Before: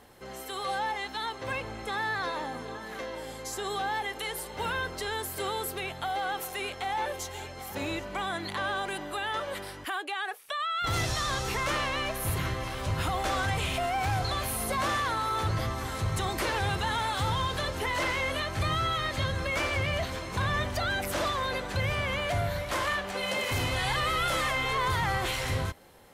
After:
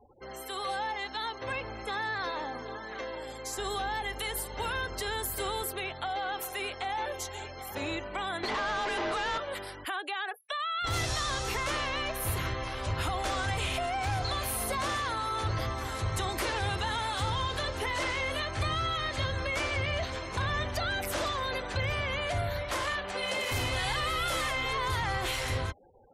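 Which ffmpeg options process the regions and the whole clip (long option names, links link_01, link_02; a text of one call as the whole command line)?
ffmpeg -i in.wav -filter_complex "[0:a]asettb=1/sr,asplit=3[link_01][link_02][link_03];[link_01]atrim=end=3.584[link_04];[link_02]atrim=start=3.58:end=5.63,asetpts=PTS-STARTPTS,afade=type=in:duration=0.004:curve=qsin,afade=type=out:start_time=2.046:duration=0.004:curve=qsin,highshelf=frequency=8600:gain=4.5,aeval=exprs='val(0)+0.00794*(sin(2*PI*50*n/s)+sin(2*PI*2*50*n/s)/2+sin(2*PI*3*50*n/s)/3+sin(2*PI*4*50*n/s)/4+sin(2*PI*5*50*n/s)/5)':channel_layout=same[link_05];[link_03]atrim=start=5.626[link_06];[link_04][link_05]acrossfade=duration=0.004:curve1=hsin:curve2=qsin[link_07];[link_07][link_06]acrossfade=duration=0.004:curve1=qsin:curve2=hsin,asettb=1/sr,asplit=3[link_08][link_09][link_10];[link_08]atrim=end=8.434[link_11];[link_09]atrim=start=8.43:end=9.38,asetpts=PTS-STARTPTS,afade=type=in:duration=0.004:curve=qsin,afade=type=out:start_time=0.946:duration=0.004:curve=qsin,lowpass=12000,afreqshift=42,asplit=2[link_12][link_13];[link_13]highpass=frequency=720:poles=1,volume=36dB,asoftclip=type=tanh:threshold=-20.5dB[link_14];[link_12][link_14]amix=inputs=2:normalize=0,lowpass=frequency=1500:poles=1,volume=-6dB[link_15];[link_10]atrim=start=9.376[link_16];[link_11][link_15]acrossfade=duration=0.004:curve1=hsin:curve2=qsin[link_17];[link_17][link_16]acrossfade=duration=0.004:curve1=qsin:curve2=hsin,afftfilt=real='re*gte(hypot(re,im),0.00447)':imag='im*gte(hypot(re,im),0.00447)':win_size=1024:overlap=0.75,equalizer=frequency=170:width=1.4:gain=-7,acrossover=split=410|3000[link_18][link_19][link_20];[link_19]acompressor=threshold=-33dB:ratio=2[link_21];[link_18][link_21][link_20]amix=inputs=3:normalize=0" out.wav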